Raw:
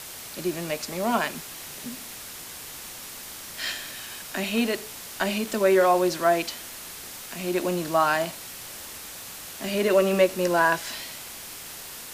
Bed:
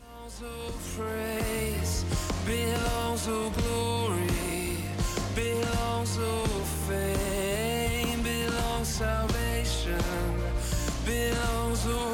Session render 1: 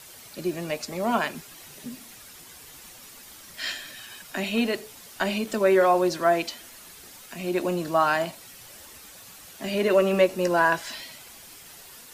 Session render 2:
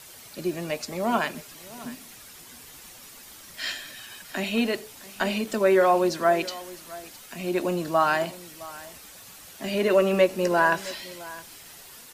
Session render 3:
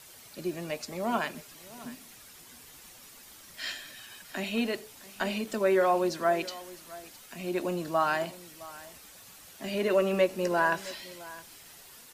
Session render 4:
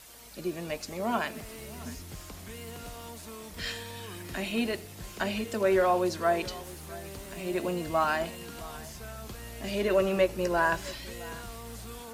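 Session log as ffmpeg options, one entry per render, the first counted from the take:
-af "afftdn=nr=9:nf=-40"
-af "aecho=1:1:663:0.112"
-af "volume=-5dB"
-filter_complex "[1:a]volume=-14.5dB[a];[0:a][a]amix=inputs=2:normalize=0"

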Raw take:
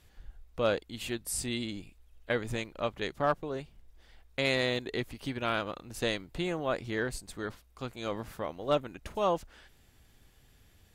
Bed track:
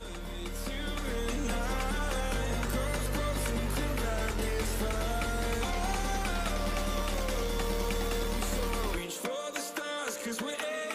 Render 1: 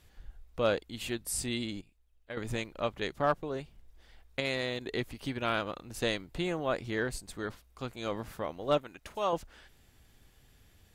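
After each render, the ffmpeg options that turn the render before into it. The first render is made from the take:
-filter_complex "[0:a]asettb=1/sr,asplit=3[a][b][c];[a]atrim=end=8.784[d];[b]atrim=start=8.78:end=9.33,asetpts=PTS-STARTPTS,afade=t=in:d=0.004:c=qsin,afade=t=out:st=0.546:d=0.004:c=qsin,lowshelf=f=420:g=-9.5[e];[c]atrim=start=9.326[f];[d][e]acrossfade=d=0.004:c1=hsin:c2=qsin[g];[g][f]acrossfade=d=0.004:c1=qsin:c2=hsin,asplit=5[h][i][j][k][l];[h]atrim=end=1.812[m];[i]atrim=start=1.808:end=2.372,asetpts=PTS-STARTPTS,volume=-11.5dB[n];[j]atrim=start=2.368:end=4.402[o];[k]atrim=start=4.398:end=4.812,asetpts=PTS-STARTPTS,volume=-4.5dB[p];[l]atrim=start=4.808[q];[m][n]acrossfade=d=0.004:c1=hsin:c2=hsin[r];[r][o]acrossfade=d=0.004:c1=hsin:c2=hsin[s];[s][p]acrossfade=d=0.004:c1=hsin:c2=hsin[t];[t][q]acrossfade=d=0.004:c1=hsin:c2=hsin"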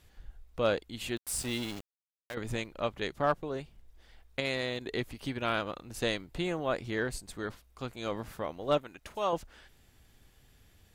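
-filter_complex "[0:a]asplit=3[a][b][c];[a]afade=t=out:st=1.16:d=0.02[d];[b]aeval=exprs='val(0)*gte(abs(val(0)),0.0112)':c=same,afade=t=in:st=1.16:d=0.02,afade=t=out:st=2.33:d=0.02[e];[c]afade=t=in:st=2.33:d=0.02[f];[d][e][f]amix=inputs=3:normalize=0"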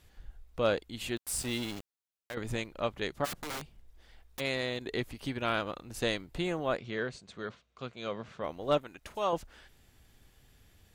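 -filter_complex "[0:a]asplit=3[a][b][c];[a]afade=t=out:st=3.24:d=0.02[d];[b]aeval=exprs='(mod(47.3*val(0)+1,2)-1)/47.3':c=same,afade=t=in:st=3.24:d=0.02,afade=t=out:st=4.39:d=0.02[e];[c]afade=t=in:st=4.39:d=0.02[f];[d][e][f]amix=inputs=3:normalize=0,asplit=3[g][h][i];[g]afade=t=out:st=6.76:d=0.02[j];[h]highpass=130,equalizer=f=300:t=q:w=4:g=-9,equalizer=f=850:t=q:w=4:g=-7,equalizer=f=1.8k:t=q:w=4:g=-3,equalizer=f=5k:t=q:w=4:g=-6,lowpass=f=5.8k:w=0.5412,lowpass=f=5.8k:w=1.3066,afade=t=in:st=6.76:d=0.02,afade=t=out:st=8.42:d=0.02[k];[i]afade=t=in:st=8.42:d=0.02[l];[j][k][l]amix=inputs=3:normalize=0"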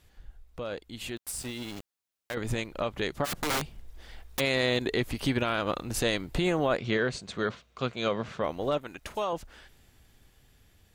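-af "alimiter=level_in=3dB:limit=-24dB:level=0:latency=1:release=144,volume=-3dB,dynaudnorm=f=480:g=11:m=11dB"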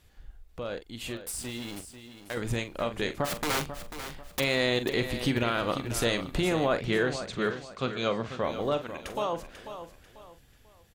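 -filter_complex "[0:a]asplit=2[a][b];[b]adelay=43,volume=-11dB[c];[a][c]amix=inputs=2:normalize=0,asplit=2[d][e];[e]aecho=0:1:492|984|1476:0.282|0.0902|0.0289[f];[d][f]amix=inputs=2:normalize=0"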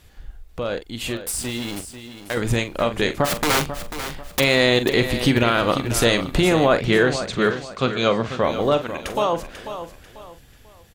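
-af "volume=9.5dB"

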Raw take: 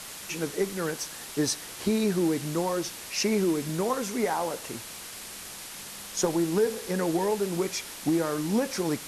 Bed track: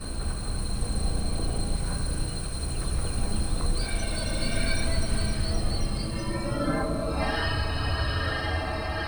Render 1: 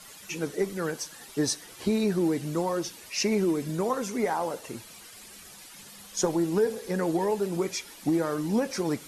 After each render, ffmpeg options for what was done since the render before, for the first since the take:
-af "afftdn=nr=11:nf=-42"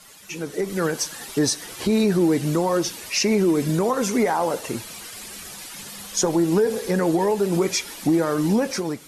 -af "alimiter=limit=-21.5dB:level=0:latency=1:release=126,dynaudnorm=f=240:g=5:m=10dB"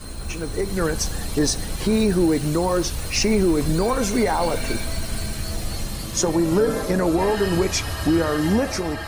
-filter_complex "[1:a]volume=-1dB[a];[0:a][a]amix=inputs=2:normalize=0"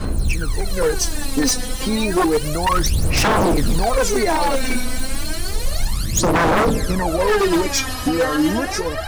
-af "aphaser=in_gain=1:out_gain=1:delay=4:decay=0.8:speed=0.31:type=sinusoidal,aeval=exprs='0.299*(abs(mod(val(0)/0.299+3,4)-2)-1)':c=same"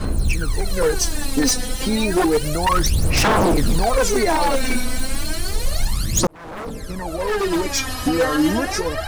-filter_complex "[0:a]asettb=1/sr,asplit=3[a][b][c];[a]atrim=end=1.334[d];[b]atrim=start=1.33:end=2.62,asetpts=PTS-STARTPTS,afade=t=in:d=0.004:c=qsin,afade=t=out:st=1.286:d=0.004:c=qsin,bandreject=f=1.1k:w=12[e];[c]atrim=start=2.616[f];[d][e]acrossfade=d=0.004:c1=hsin:c2=qsin[g];[g][f]acrossfade=d=0.004:c1=qsin:c2=hsin,asplit=2[h][i];[h]atrim=end=6.27,asetpts=PTS-STARTPTS,afade=t=out:st=6.266:d=0.004:c=hsin[j];[i]atrim=start=6.27,asetpts=PTS-STARTPTS,afade=t=in:d=1.87[k];[j][k]concat=n=2:v=0:a=1"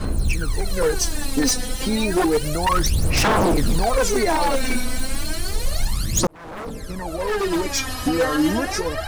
-af "volume=-1.5dB"

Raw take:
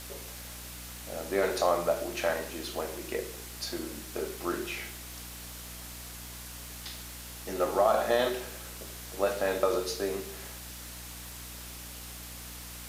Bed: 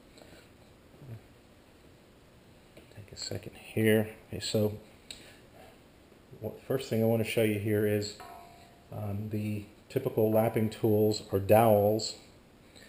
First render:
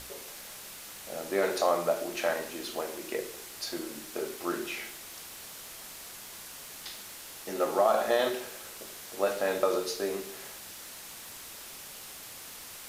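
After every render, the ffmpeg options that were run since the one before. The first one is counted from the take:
-af "bandreject=f=60:t=h:w=6,bandreject=f=120:t=h:w=6,bandreject=f=180:t=h:w=6,bandreject=f=240:t=h:w=6,bandreject=f=300:t=h:w=6"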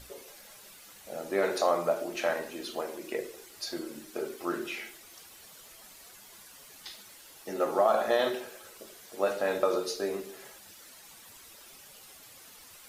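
-af "afftdn=nr=10:nf=-46"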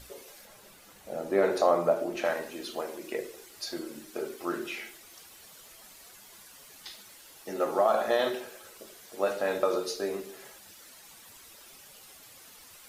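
-filter_complex "[0:a]asettb=1/sr,asplit=3[a][b][c];[a]atrim=end=0.454[d];[b]atrim=start=0.45:end=2.25,asetpts=PTS-STARTPTS,afade=t=in:d=0.004:c=qsin,afade=t=out:st=1.796:d=0.004:c=qsin,tiltshelf=f=1.4k:g=4.5[e];[c]atrim=start=2.246[f];[d][e]acrossfade=d=0.004:c1=hsin:c2=qsin[g];[g][f]acrossfade=d=0.004:c1=qsin:c2=hsin"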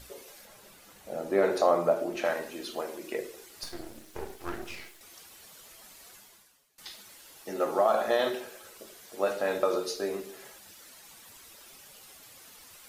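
-filter_complex "[0:a]asettb=1/sr,asplit=3[a][b][c];[a]atrim=end=3.634[d];[b]atrim=start=3.63:end=5.01,asetpts=PTS-STARTPTS,afade=t=in:d=0.004:c=qsin,afade=t=out:st=1.376:d=0.004:c=qsin,aeval=exprs='max(val(0),0)':c=same[e];[c]atrim=start=5.006[f];[d][e]acrossfade=d=0.004:c1=hsin:c2=qsin[g];[g][f]acrossfade=d=0.004:c1=qsin:c2=hsin,asplit=2[h][i];[h]atrim=end=6.78,asetpts=PTS-STARTPTS,afade=t=out:st=6.16:d=0.62:c=qua:silence=0.0794328[j];[i]atrim=start=6.78,asetpts=PTS-STARTPTS,afade=t=in:d=0.004:c=hsin:silence=0.0794328[k];[j][k]concat=n=2:v=0:a=1"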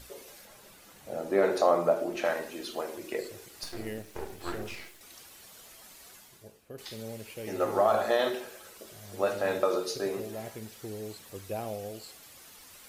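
-filter_complex "[1:a]volume=-14dB[a];[0:a][a]amix=inputs=2:normalize=0"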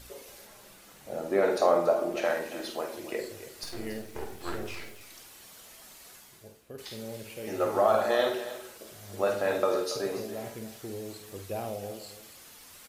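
-filter_complex "[0:a]asplit=2[a][b];[b]adelay=50,volume=-7.5dB[c];[a][c]amix=inputs=2:normalize=0,aecho=1:1:282:0.2"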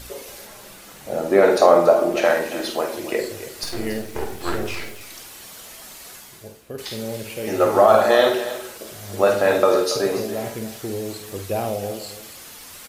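-af "volume=10.5dB,alimiter=limit=-2dB:level=0:latency=1"

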